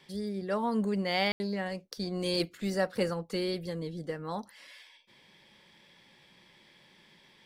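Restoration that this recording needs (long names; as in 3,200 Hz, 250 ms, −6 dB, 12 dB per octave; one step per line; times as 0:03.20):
ambience match 0:01.32–0:01.40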